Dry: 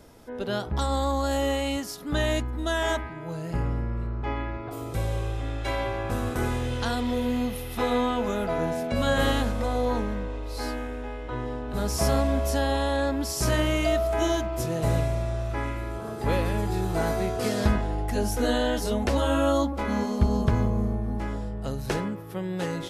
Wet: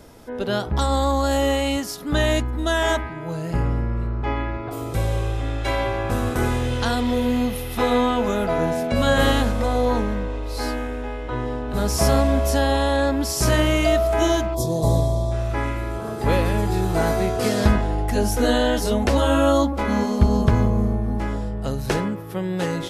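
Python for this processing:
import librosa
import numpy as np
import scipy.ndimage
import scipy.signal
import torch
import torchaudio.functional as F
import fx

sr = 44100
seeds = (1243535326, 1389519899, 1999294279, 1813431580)

y = fx.spec_box(x, sr, start_s=14.54, length_s=0.78, low_hz=1200.0, high_hz=3200.0, gain_db=-19)
y = y * 10.0 ** (5.5 / 20.0)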